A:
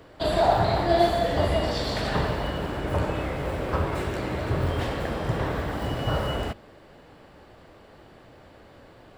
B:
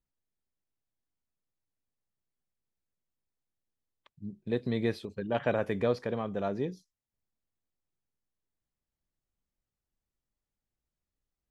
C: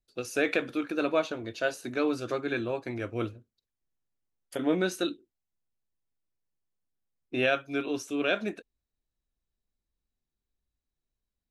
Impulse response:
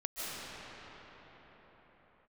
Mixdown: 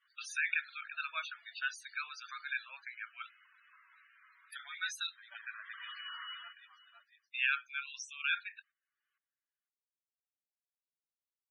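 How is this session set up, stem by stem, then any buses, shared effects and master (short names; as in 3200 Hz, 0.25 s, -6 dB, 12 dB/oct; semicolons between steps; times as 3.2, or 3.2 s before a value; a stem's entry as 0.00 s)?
-4.5 dB, 0.00 s, no send, echo send -20 dB, limiter -19.5 dBFS, peak gain reduction 11.5 dB; auto duck -19 dB, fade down 1.10 s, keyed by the third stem
-3.5 dB, 0.00 s, no send, echo send -7 dB, upward expander 1.5:1, over -36 dBFS
-0.5 dB, 0.00 s, no send, no echo send, dry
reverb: off
echo: echo 0.507 s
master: gate -54 dBFS, range -15 dB; HPF 1400 Hz 24 dB/oct; loudest bins only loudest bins 32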